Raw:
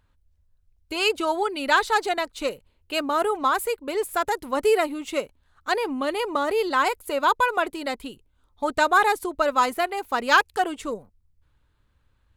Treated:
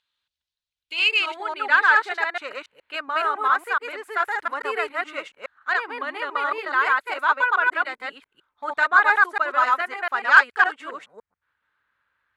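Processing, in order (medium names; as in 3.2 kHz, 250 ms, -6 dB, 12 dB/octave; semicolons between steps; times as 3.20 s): chunks repeated in reverse 140 ms, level 0 dB; band-pass sweep 3.7 kHz -> 1.6 kHz, 0.67–1.59 s; Chebyshev shaper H 5 -30 dB, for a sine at -5 dBFS; trim +4 dB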